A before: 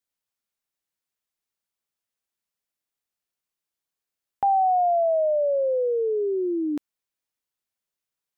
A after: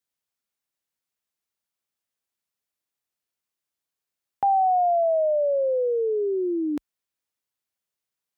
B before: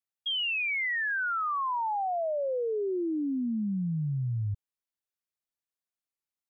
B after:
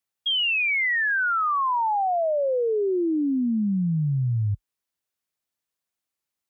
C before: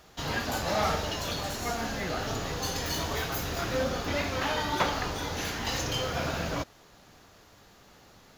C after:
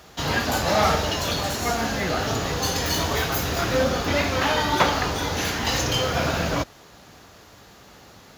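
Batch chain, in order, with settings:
high-pass filter 41 Hz 24 dB per octave
loudness normalisation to −23 LKFS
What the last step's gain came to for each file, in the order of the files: 0.0, +6.5, +7.5 decibels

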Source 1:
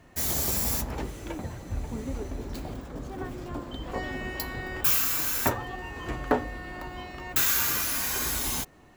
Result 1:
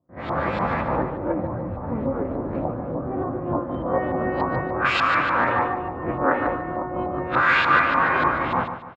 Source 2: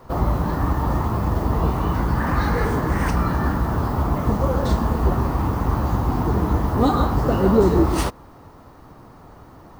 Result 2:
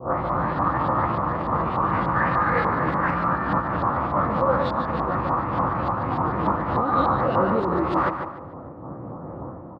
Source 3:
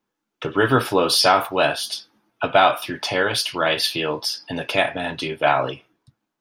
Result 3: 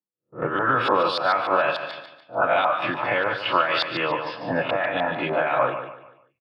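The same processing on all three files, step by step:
peak hold with a rise ahead of every peak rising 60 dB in 0.33 s
noise gate with hold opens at −35 dBFS
parametric band 430 Hz −10 dB 0.24 octaves
low-pass that shuts in the quiet parts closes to 390 Hz, open at −15 dBFS
automatic gain control gain up to 9 dB
brickwall limiter −9.5 dBFS
downward compressor 5 to 1, threshold −24 dBFS
auto-filter low-pass saw up 3.4 Hz 950–3,700 Hz
loudspeaker in its box 130–9,500 Hz, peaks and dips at 240 Hz −4 dB, 520 Hz +7 dB, 1,200 Hz +5 dB, 3,000 Hz −4 dB, 6,000 Hz −9 dB
repeating echo 146 ms, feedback 35%, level −8.5 dB
amplitude modulation by smooth noise, depth 50%
loudness normalisation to −23 LKFS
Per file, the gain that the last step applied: +7.0, +5.5, +3.5 decibels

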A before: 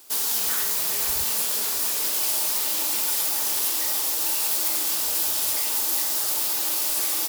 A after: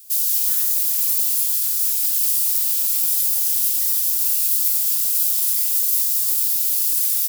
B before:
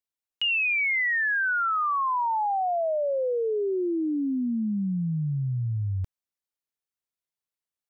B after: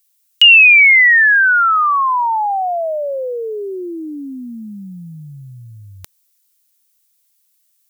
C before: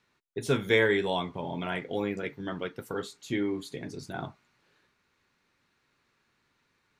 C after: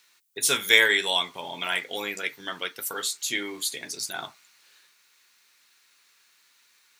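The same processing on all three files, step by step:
first difference
normalise the peak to −2 dBFS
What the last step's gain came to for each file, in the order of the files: +1.5, +27.0, +20.0 decibels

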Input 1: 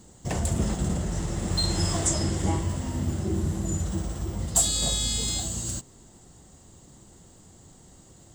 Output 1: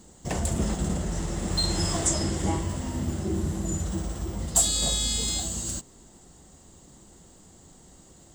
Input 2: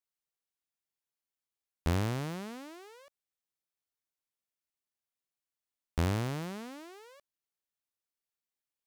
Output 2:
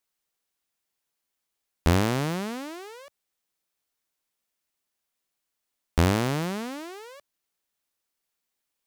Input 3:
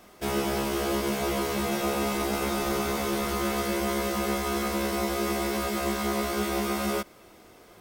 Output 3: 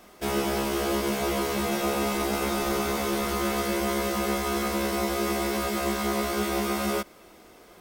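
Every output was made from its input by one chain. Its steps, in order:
parametric band 110 Hz −8 dB 0.5 octaves
loudness normalisation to −27 LKFS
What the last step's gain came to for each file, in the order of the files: +0.5, +10.0, +1.0 decibels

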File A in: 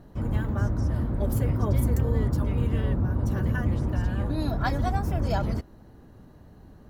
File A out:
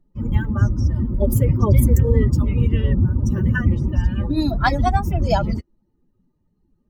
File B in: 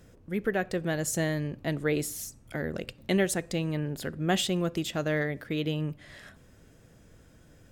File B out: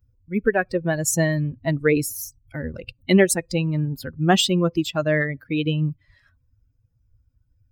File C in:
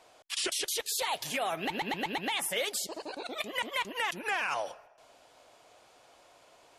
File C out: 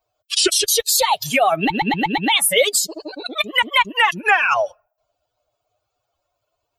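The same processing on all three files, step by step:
spectral dynamics exaggerated over time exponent 2
normalise the peak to −3 dBFS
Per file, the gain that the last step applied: +12.5, +12.0, +20.0 decibels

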